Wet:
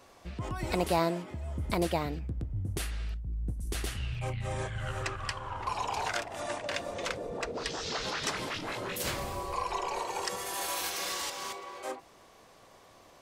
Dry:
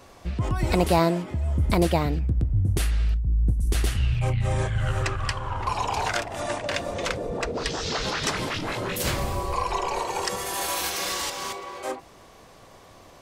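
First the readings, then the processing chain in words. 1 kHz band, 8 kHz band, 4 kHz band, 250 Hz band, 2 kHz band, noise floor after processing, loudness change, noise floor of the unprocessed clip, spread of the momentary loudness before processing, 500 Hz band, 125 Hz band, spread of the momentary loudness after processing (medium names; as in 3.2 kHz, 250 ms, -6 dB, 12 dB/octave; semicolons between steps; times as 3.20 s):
-6.5 dB, -6.0 dB, -6.0 dB, -9.0 dB, -6.0 dB, -57 dBFS, -8.0 dB, -50 dBFS, 7 LU, -7.0 dB, -12.0 dB, 7 LU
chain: bass shelf 190 Hz -7.5 dB; trim -6 dB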